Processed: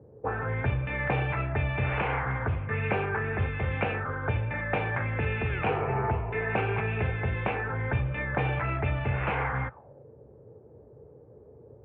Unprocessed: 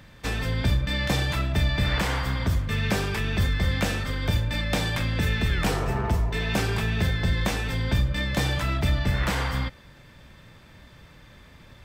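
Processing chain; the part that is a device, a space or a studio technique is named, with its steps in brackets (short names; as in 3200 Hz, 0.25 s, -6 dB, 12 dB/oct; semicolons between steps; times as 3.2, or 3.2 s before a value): envelope filter bass rig (envelope low-pass 400–2600 Hz up, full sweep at -21 dBFS; speaker cabinet 73–2200 Hz, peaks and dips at 130 Hz +4 dB, 180 Hz -9 dB, 270 Hz -4 dB, 440 Hz +7 dB, 800 Hz +7 dB, 1900 Hz -8 dB); gain -3.5 dB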